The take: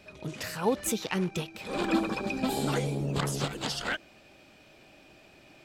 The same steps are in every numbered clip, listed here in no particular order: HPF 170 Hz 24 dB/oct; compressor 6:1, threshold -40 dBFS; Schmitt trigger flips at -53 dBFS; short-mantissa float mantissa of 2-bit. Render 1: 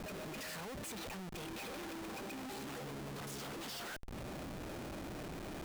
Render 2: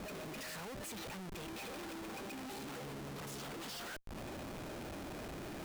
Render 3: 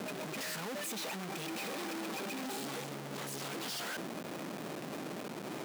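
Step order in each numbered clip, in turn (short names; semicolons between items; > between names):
HPF > short-mantissa float > compressor > Schmitt trigger; compressor > short-mantissa float > HPF > Schmitt trigger; short-mantissa float > Schmitt trigger > compressor > HPF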